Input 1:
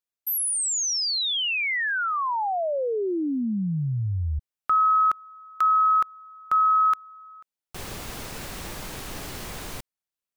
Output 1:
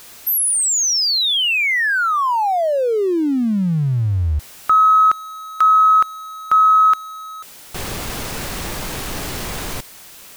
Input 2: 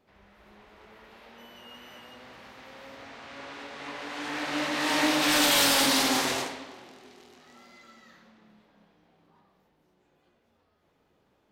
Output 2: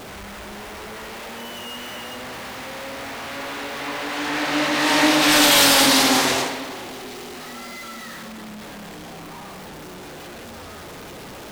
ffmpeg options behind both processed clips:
ffmpeg -i in.wav -af "aeval=exprs='val(0)+0.5*0.0106*sgn(val(0))':channel_layout=same,volume=7.5dB" out.wav

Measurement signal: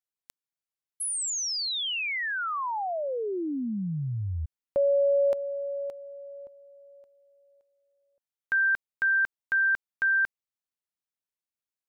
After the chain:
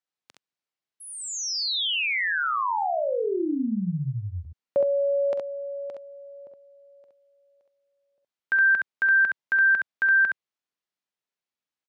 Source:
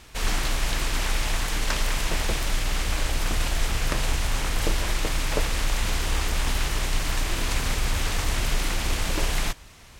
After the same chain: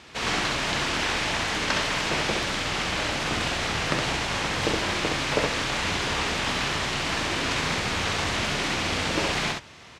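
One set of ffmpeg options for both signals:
ffmpeg -i in.wav -af "highpass=130,lowpass=5200,aecho=1:1:45|67:0.211|0.668,volume=3dB" out.wav

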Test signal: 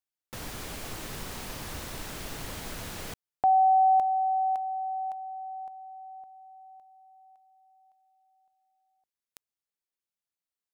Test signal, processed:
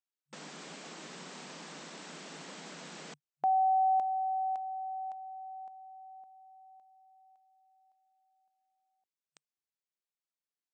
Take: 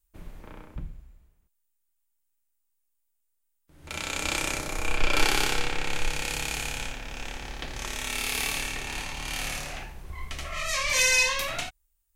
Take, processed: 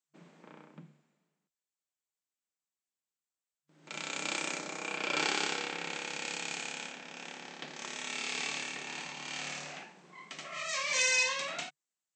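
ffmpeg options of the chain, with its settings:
ffmpeg -i in.wav -af "afftfilt=real='re*between(b*sr/4096,150,8300)':imag='im*between(b*sr/4096,150,8300)':win_size=4096:overlap=0.75,volume=-6dB" out.wav

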